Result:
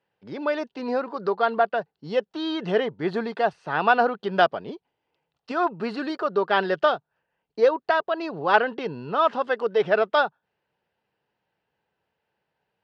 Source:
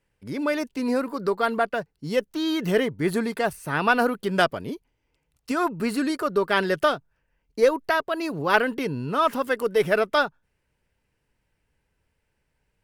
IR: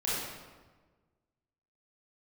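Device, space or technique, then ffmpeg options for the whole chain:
kitchen radio: -af "highpass=200,equalizer=frequency=270:width_type=q:width=4:gain=-7,equalizer=frequency=770:width_type=q:width=4:gain=7,equalizer=frequency=2200:width_type=q:width=4:gain=-7,lowpass=frequency=4300:width=0.5412,lowpass=frequency=4300:width=1.3066"

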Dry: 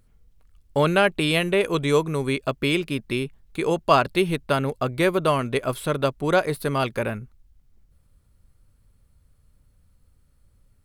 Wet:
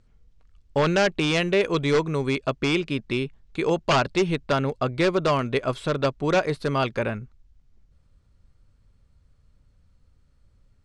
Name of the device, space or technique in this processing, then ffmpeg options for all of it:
synthesiser wavefolder: -af "aeval=exprs='0.211*(abs(mod(val(0)/0.211+3,4)-2)-1)':channel_layout=same,lowpass=frequency=7000:width=0.5412,lowpass=frequency=7000:width=1.3066"

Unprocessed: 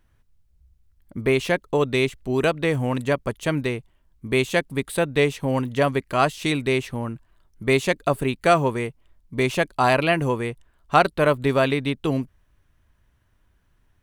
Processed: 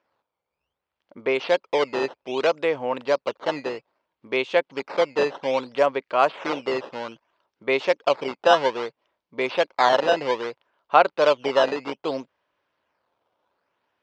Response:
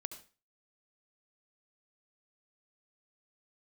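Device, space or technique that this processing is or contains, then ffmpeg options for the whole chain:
circuit-bent sampling toy: -af "acrusher=samples=11:mix=1:aa=0.000001:lfo=1:lforange=17.6:lforate=0.62,highpass=450,equalizer=frequency=530:width_type=q:width=4:gain=6,equalizer=frequency=910:width_type=q:width=4:gain=4,equalizer=frequency=1800:width_type=q:width=4:gain=-4,equalizer=frequency=3900:width_type=q:width=4:gain=-3,lowpass=frequency=4500:width=0.5412,lowpass=frequency=4500:width=1.3066"

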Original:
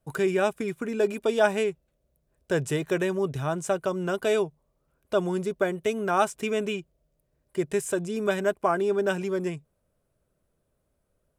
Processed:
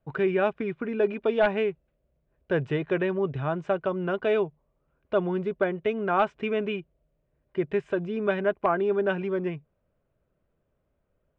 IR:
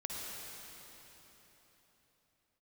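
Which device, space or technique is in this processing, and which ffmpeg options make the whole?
synthesiser wavefolder: -af "aeval=exprs='0.237*(abs(mod(val(0)/0.237+3,4)-2)-1)':channel_layout=same,lowpass=frequency=3000:width=0.5412,lowpass=frequency=3000:width=1.3066"

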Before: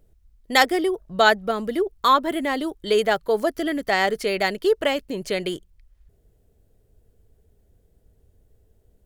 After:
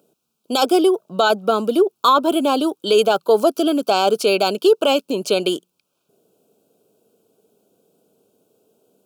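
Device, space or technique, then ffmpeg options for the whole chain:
PA system with an anti-feedback notch: -af "highpass=frequency=170:poles=1,highpass=frequency=190:width=0.5412,highpass=frequency=190:width=1.3066,asuperstop=centerf=1900:order=8:qfactor=2.2,alimiter=limit=-14.5dB:level=0:latency=1:release=19,volume=8.5dB"

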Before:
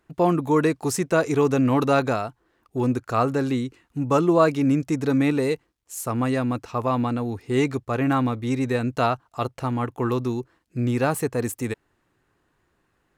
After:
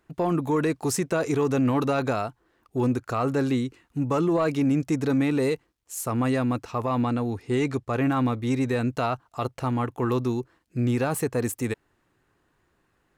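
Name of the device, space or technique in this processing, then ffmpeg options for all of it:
soft clipper into limiter: -filter_complex "[0:a]asoftclip=type=tanh:threshold=-8.5dB,alimiter=limit=-16.5dB:level=0:latency=1:release=29,asettb=1/sr,asplit=3[link_01][link_02][link_03];[link_01]atrim=end=7.014[link_04];[link_02]atrim=start=7.01:end=7.94,asetpts=PTS-STARTPTS,afade=type=in:duration=0.004:curve=qsin,afade=type=out:start_time=0.926:duration=0.004:curve=qsin,lowpass=12000[link_05];[link_03]atrim=start=7.936[link_06];[link_04][link_05]acrossfade=duration=0.004:curve1=hsin:curve2=qsin[link_07];[link_07][link_06]acrossfade=duration=0.004:curve1=qsin:curve2=hsin"

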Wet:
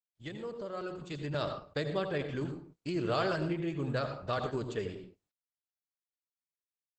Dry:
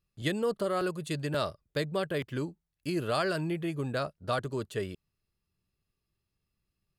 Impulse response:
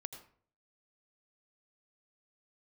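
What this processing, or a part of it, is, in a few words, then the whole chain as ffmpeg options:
speakerphone in a meeting room: -filter_complex "[0:a]asplit=3[link_01][link_02][link_03];[link_01]afade=type=out:start_time=1.29:duration=0.02[link_04];[link_02]lowpass=frequency=11000:width=0.5412,lowpass=frequency=11000:width=1.3066,afade=type=in:start_time=1.29:duration=0.02,afade=type=out:start_time=2.28:duration=0.02[link_05];[link_03]afade=type=in:start_time=2.28:duration=0.02[link_06];[link_04][link_05][link_06]amix=inputs=3:normalize=0[link_07];[1:a]atrim=start_sample=2205[link_08];[link_07][link_08]afir=irnorm=-1:irlink=0,dynaudnorm=framelen=270:gausssize=9:maxgain=10dB,agate=range=-29dB:threshold=-46dB:ratio=16:detection=peak,volume=-8dB" -ar 48000 -c:a libopus -b:a 12k

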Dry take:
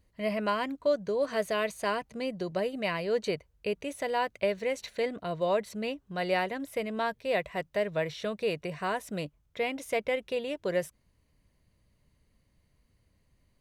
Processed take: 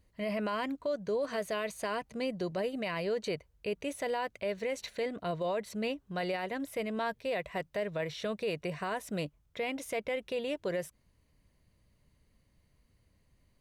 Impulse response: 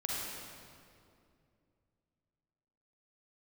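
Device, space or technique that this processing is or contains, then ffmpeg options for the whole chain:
stacked limiters: -af "alimiter=limit=-22dB:level=0:latency=1:release=207,alimiter=level_in=1.5dB:limit=-24dB:level=0:latency=1:release=11,volume=-1.5dB"

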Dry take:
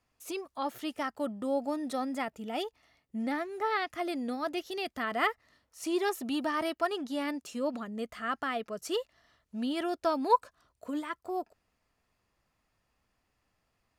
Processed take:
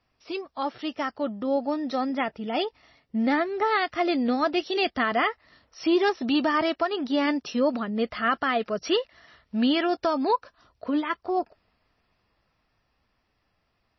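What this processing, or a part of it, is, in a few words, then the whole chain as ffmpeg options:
low-bitrate web radio: -filter_complex "[0:a]asettb=1/sr,asplit=3[link_01][link_02][link_03];[link_01]atrim=end=8.864[link_04];[link_02]atrim=start=8.86:end=9.87,asetpts=PTS-STARTPTS,afade=type=in:duration=0.004:curve=qsin,afade=type=out:start_time=1.006:duration=0.004:curve=qsin,equalizer=frequency=2000:width_type=o:width=1.2:gain=4.5[link_05];[link_03]atrim=start=9.866[link_06];[link_04][link_05]acrossfade=duration=0.004:curve1=hsin:curve2=qsin[link_07];[link_07][link_06]acrossfade=duration=0.004:curve1=qsin:curve2=hsin,dynaudnorm=framelen=260:gausssize=21:maxgain=6dB,alimiter=limit=-18.5dB:level=0:latency=1:release=345,volume=5dB" -ar 22050 -c:a libmp3lame -b:a 24k

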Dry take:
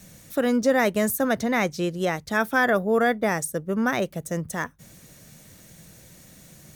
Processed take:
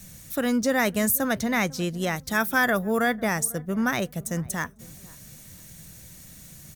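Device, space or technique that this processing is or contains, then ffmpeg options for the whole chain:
smiley-face EQ: -filter_complex "[0:a]lowshelf=frequency=100:gain=7.5,equalizer=frequency=460:width_type=o:width=1.5:gain=-5.5,highshelf=frequency=6400:gain=6.5,asettb=1/sr,asplit=3[link_01][link_02][link_03];[link_01]atrim=end=2.164[link_04];[link_02]atrim=start=2.16:end=3.06,asetpts=PTS-STARTPTS,afade=type=in:duration=0.004:curve=qsin,afade=type=out:start_time=0.896:duration=0.004:curve=qsin,highshelf=frequency=8100:gain=5.5[link_05];[link_03]atrim=start=3.056[link_06];[link_04][link_05]acrossfade=duration=0.004:curve1=hsin:curve2=qsin[link_07];[link_07][link_06]acrossfade=duration=0.004:curve1=qsin:curve2=hsin,asplit=2[link_08][link_09];[link_09]adelay=498,lowpass=frequency=860:poles=1,volume=-20.5dB,asplit=2[link_10][link_11];[link_11]adelay=498,lowpass=frequency=860:poles=1,volume=0.35,asplit=2[link_12][link_13];[link_13]adelay=498,lowpass=frequency=860:poles=1,volume=0.35[link_14];[link_08][link_10][link_12][link_14]amix=inputs=4:normalize=0"

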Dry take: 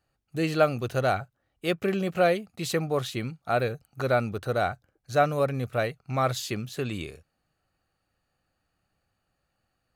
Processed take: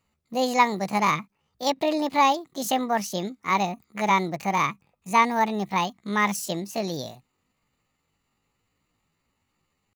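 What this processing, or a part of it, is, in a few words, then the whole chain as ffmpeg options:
chipmunk voice: -af "asetrate=70004,aresample=44100,atempo=0.629961,volume=2.5dB"

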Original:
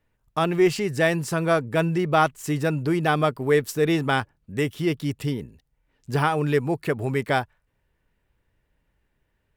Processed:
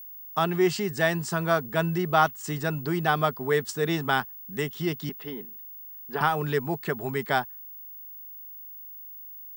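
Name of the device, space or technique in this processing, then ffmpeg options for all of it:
old television with a line whistle: -filter_complex "[0:a]asettb=1/sr,asplit=3[link_01][link_02][link_03];[link_01]atrim=end=5.094[link_04];[link_02]atrim=start=5.09:end=6.21,asetpts=PTS-STARTPTS,afade=type=in:duration=0.004:curve=qsin,afade=type=out:start_time=1.116:duration=0.004:curve=qsin,acrossover=split=220 3300:gain=0.0708 1 0.0794[link_05][link_06][link_07];[link_05][link_06][link_07]amix=inputs=3:normalize=0[link_08];[link_03]atrim=start=6.206[link_09];[link_04][link_08]acrossfade=duration=0.004:curve1=hsin:curve2=qsin[link_10];[link_10][link_09]acrossfade=duration=0.004:curve1=qsin:curve2=hsin,highpass=frequency=160:width=0.5412,highpass=frequency=160:width=1.3066,equalizer=frequency=300:width_type=q:width=4:gain=-9,equalizer=frequency=520:width_type=q:width=4:gain=-10,equalizer=frequency=2400:width_type=q:width=4:gain=-8,lowpass=frequency=8700:width=0.5412,lowpass=frequency=8700:width=1.3066,aeval=exprs='val(0)+0.01*sin(2*PI*15625*n/s)':channel_layout=same"

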